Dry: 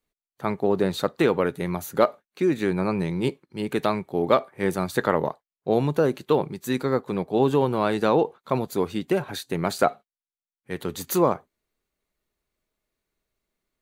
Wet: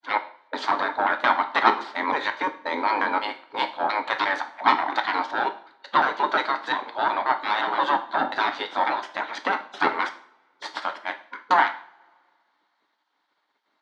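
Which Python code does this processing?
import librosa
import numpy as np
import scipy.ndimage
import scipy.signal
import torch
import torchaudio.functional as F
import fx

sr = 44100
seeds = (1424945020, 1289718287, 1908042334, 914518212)

p1 = fx.block_reorder(x, sr, ms=177.0, group=3)
p2 = fx.rider(p1, sr, range_db=5, speed_s=2.0)
p3 = p1 + (p2 * librosa.db_to_amplitude(-2.5))
p4 = 10.0 ** (-10.5 / 20.0) * np.tanh(p3 / 10.0 ** (-10.5 / 20.0))
p5 = fx.spec_gate(p4, sr, threshold_db=-15, keep='weak')
p6 = fx.cabinet(p5, sr, low_hz=250.0, low_slope=24, high_hz=4000.0, hz=(330.0, 470.0, 920.0, 1500.0, 2600.0), db=(3, -7, 8, 3, -10))
p7 = fx.rev_double_slope(p6, sr, seeds[0], early_s=0.47, late_s=2.0, knee_db=-26, drr_db=6.5)
y = p7 * librosa.db_to_amplitude(7.5)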